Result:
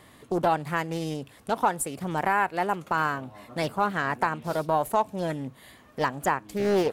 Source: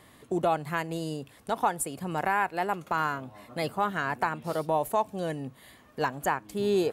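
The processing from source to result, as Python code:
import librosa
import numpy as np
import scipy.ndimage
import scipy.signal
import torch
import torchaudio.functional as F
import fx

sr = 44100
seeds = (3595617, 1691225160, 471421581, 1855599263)

y = fx.doppler_dist(x, sr, depth_ms=0.45)
y = F.gain(torch.from_numpy(y), 2.5).numpy()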